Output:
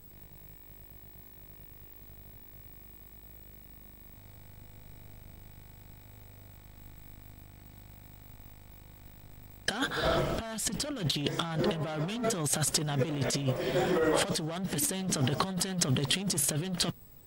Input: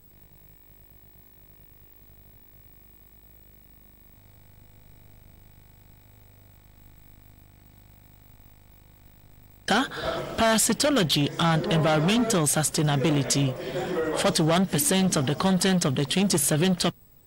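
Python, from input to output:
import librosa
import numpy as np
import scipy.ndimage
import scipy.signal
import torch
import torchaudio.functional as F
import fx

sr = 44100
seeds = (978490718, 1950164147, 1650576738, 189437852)

y = fx.low_shelf(x, sr, hz=140.0, db=9.0, at=(10.06, 11.0))
y = fx.over_compress(y, sr, threshold_db=-26.0, ratio=-0.5)
y = y * librosa.db_to_amplitude(-3.0)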